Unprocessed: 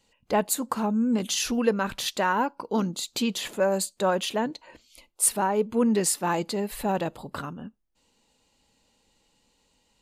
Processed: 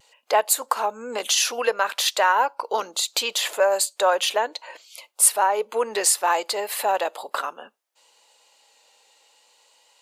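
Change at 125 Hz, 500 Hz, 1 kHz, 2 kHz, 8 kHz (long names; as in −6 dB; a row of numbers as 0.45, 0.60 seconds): below −25 dB, +3.0 dB, +6.5 dB, +7.0 dB, +6.5 dB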